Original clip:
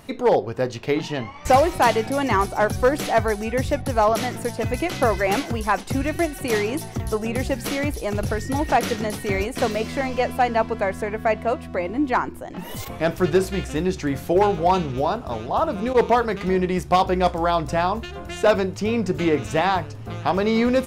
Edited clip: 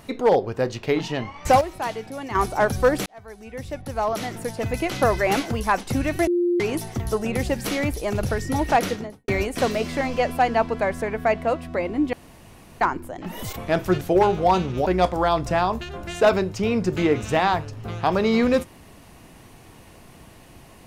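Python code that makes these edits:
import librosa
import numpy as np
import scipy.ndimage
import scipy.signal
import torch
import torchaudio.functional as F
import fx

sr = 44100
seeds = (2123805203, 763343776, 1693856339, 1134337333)

y = fx.studio_fade_out(x, sr, start_s=8.78, length_s=0.5)
y = fx.edit(y, sr, fx.fade_down_up(start_s=1.41, length_s=1.14, db=-10.5, fade_s=0.2, curve='log'),
    fx.fade_in_span(start_s=3.06, length_s=1.95),
    fx.bleep(start_s=6.27, length_s=0.33, hz=350.0, db=-17.5),
    fx.insert_room_tone(at_s=12.13, length_s=0.68),
    fx.cut(start_s=13.33, length_s=0.88),
    fx.cut(start_s=15.06, length_s=2.02), tone=tone)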